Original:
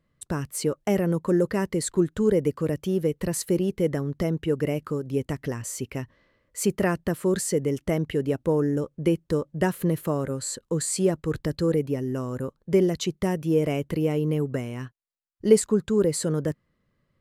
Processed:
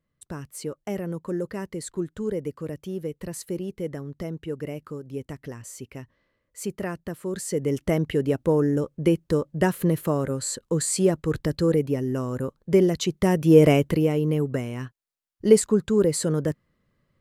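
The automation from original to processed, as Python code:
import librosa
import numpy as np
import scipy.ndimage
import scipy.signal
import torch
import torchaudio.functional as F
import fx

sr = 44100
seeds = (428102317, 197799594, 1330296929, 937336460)

y = fx.gain(x, sr, db=fx.line((7.31, -7.0), (7.75, 2.0), (13.08, 2.0), (13.67, 9.5), (14.12, 1.5)))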